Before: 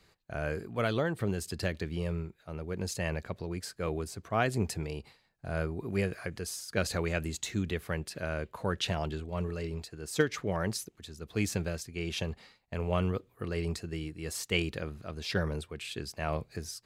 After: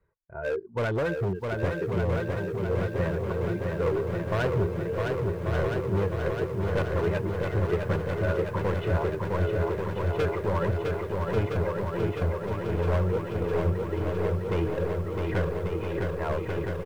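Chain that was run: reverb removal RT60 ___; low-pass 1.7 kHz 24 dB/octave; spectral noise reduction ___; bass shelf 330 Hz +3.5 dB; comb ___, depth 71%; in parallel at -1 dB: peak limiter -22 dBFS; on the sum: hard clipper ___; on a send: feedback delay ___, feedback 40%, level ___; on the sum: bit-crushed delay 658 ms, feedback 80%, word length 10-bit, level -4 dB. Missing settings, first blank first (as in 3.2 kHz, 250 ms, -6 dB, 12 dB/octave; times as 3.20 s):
1.2 s, 16 dB, 2 ms, -24 dBFS, 1139 ms, -6 dB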